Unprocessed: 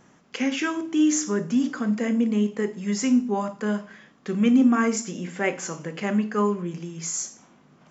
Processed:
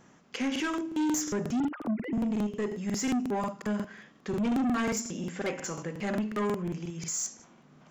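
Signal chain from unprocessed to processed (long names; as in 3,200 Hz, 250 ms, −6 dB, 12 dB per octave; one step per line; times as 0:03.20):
0:01.60–0:02.13: three sine waves on the formant tracks
soft clipping −23 dBFS, distortion −9 dB
regular buffer underruns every 0.18 s, samples 2,048, repeat, from 0:00.51
level −2 dB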